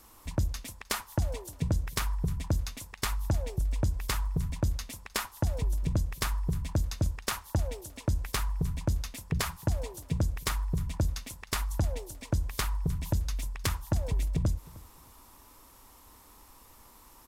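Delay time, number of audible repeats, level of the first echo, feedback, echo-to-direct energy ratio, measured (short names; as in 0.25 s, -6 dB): 0.309 s, 2, -21.5 dB, 25%, -21.0 dB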